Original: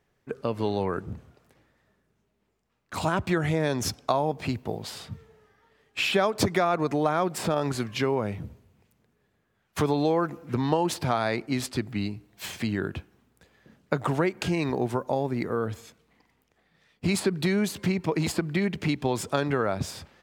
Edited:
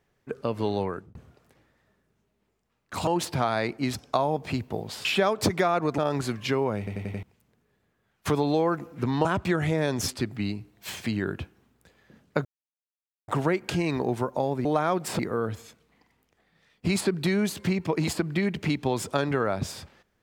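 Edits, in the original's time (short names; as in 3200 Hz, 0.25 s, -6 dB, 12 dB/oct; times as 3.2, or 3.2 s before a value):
0.8–1.15 fade out
3.07–3.9 swap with 10.76–11.64
5–6.02 cut
6.95–7.49 move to 15.38
8.29 stutter in place 0.09 s, 5 plays
14.01 insert silence 0.83 s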